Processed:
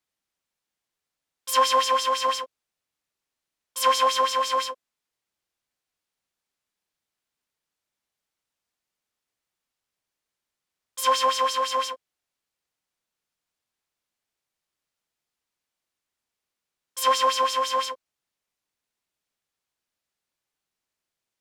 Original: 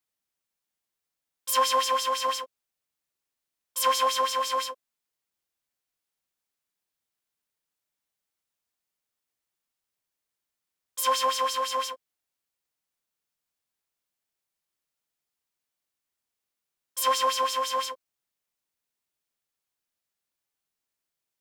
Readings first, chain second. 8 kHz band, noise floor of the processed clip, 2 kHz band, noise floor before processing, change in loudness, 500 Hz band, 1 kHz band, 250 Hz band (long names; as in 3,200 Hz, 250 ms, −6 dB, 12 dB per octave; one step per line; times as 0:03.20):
+0.5 dB, below −85 dBFS, +3.5 dB, below −85 dBFS, +3.0 dB, +3.5 dB, +3.5 dB, +3.5 dB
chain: high-shelf EQ 11,000 Hz −11.5 dB
level +3.5 dB